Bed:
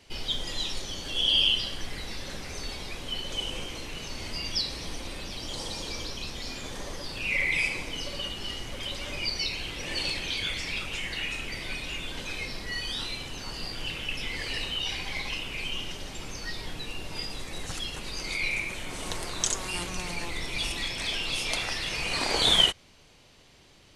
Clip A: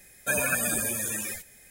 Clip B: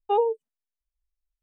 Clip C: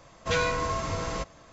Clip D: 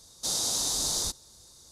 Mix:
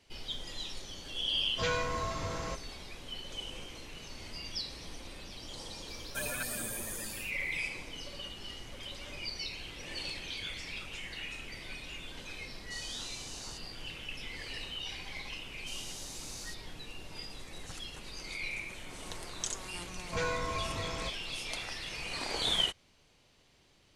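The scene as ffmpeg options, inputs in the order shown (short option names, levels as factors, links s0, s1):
-filter_complex "[3:a]asplit=2[s0][s1];[4:a]asplit=2[s2][s3];[0:a]volume=0.355[s4];[1:a]aeval=exprs='clip(val(0),-1,0.0562)':c=same[s5];[s2]lowpass=8300[s6];[s1]equalizer=f=3300:w=1.5:g=-4.5[s7];[s0]atrim=end=1.52,asetpts=PTS-STARTPTS,volume=0.501,afade=t=in:d=0.004:c=hsin,afade=t=out:st=1.516:d=0.004:c=hsin,adelay=1320[s8];[s5]atrim=end=1.7,asetpts=PTS-STARTPTS,volume=0.316,afade=t=in:d=0.004:c=hsin,afade=t=out:st=1.696:d=0.004:c=hsin,adelay=5880[s9];[s6]atrim=end=1.71,asetpts=PTS-STARTPTS,volume=0.158,afade=t=in:d=0.004:c=hsin,afade=t=out:st=1.706:d=0.004:c=hsin,adelay=12470[s10];[s3]atrim=end=1.71,asetpts=PTS-STARTPTS,volume=0.141,afade=t=in:d=0.004:c=hsin,afade=t=out:st=1.706:d=0.004:c=hsin,adelay=15430[s11];[s7]atrim=end=1.52,asetpts=PTS-STARTPTS,volume=0.447,afade=t=in:d=0.004:c=hsin,afade=t=out:st=1.516:d=0.004:c=hsin,adelay=19860[s12];[s4][s8][s9][s10][s11][s12]amix=inputs=6:normalize=0"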